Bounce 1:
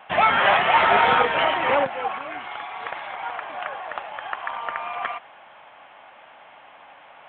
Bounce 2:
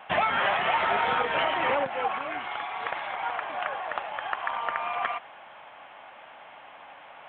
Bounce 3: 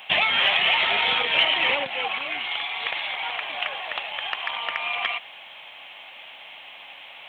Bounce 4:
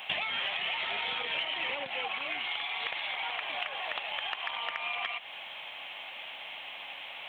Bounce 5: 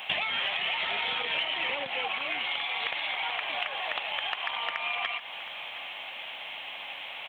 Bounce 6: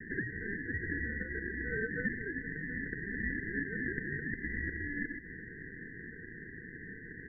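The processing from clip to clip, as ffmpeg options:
-af "acompressor=threshold=-22dB:ratio=6"
-af "aexciter=amount=8.7:drive=3.8:freq=2.2k,volume=-2.5dB"
-af "acompressor=threshold=-32dB:ratio=5"
-af "aecho=1:1:718:0.168,volume=3dB"
-af "asuperpass=centerf=720:order=20:qfactor=1.4,aeval=exprs='val(0)*sin(2*PI*1000*n/s)':c=same,volume=5.5dB"

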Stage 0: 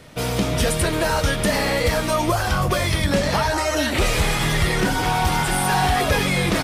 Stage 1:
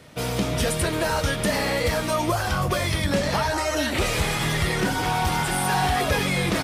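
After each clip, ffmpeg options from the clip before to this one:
-af "highpass=50,volume=-3dB"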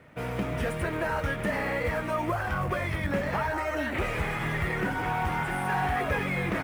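-af "acrusher=bits=3:mode=log:mix=0:aa=0.000001,highshelf=f=3k:t=q:w=1.5:g=-12.5,volume=-6dB"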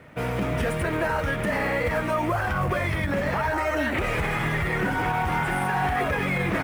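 -af "alimiter=limit=-22dB:level=0:latency=1:release=29,volume=5.5dB"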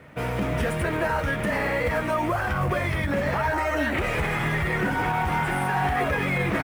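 -filter_complex "[0:a]asplit=2[a][b];[b]adelay=14,volume=-12.5dB[c];[a][c]amix=inputs=2:normalize=0"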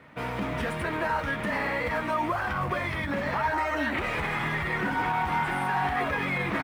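-af "equalizer=f=250:t=o:w=1:g=6,equalizer=f=1k:t=o:w=1:g=8,equalizer=f=2k:t=o:w=1:g=4,equalizer=f=4k:t=o:w=1:g=7,volume=-9dB"

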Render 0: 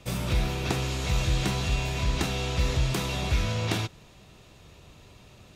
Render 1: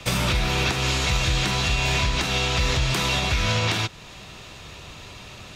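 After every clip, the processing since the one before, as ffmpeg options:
-filter_complex "[0:a]acrossover=split=250|850|7400[a][b][c][d];[c]acontrast=86[e];[a][b][e][d]amix=inputs=4:normalize=0,alimiter=limit=-20.5dB:level=0:latency=1:release=288,volume=8dB"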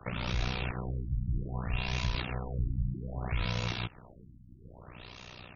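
-filter_complex "[0:a]acrossover=split=130[a][b];[b]acompressor=threshold=-27dB:ratio=6[c];[a][c]amix=inputs=2:normalize=0,tremolo=f=61:d=0.919,afftfilt=real='re*lt(b*sr/1024,290*pow(6900/290,0.5+0.5*sin(2*PI*0.62*pts/sr)))':imag='im*lt(b*sr/1024,290*pow(6900/290,0.5+0.5*sin(2*PI*0.62*pts/sr)))':win_size=1024:overlap=0.75,volume=-3dB"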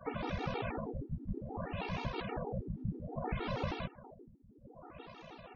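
-af "bandpass=f=510:t=q:w=0.71:csg=0,afftfilt=real='hypot(re,im)*cos(2*PI*random(0))':imag='hypot(re,im)*sin(2*PI*random(1))':win_size=512:overlap=0.75,afftfilt=real='re*gt(sin(2*PI*6.3*pts/sr)*(1-2*mod(floor(b*sr/1024/240),2)),0)':imag='im*gt(sin(2*PI*6.3*pts/sr)*(1-2*mod(floor(b*sr/1024/240),2)),0)':win_size=1024:overlap=0.75,volume=13dB"

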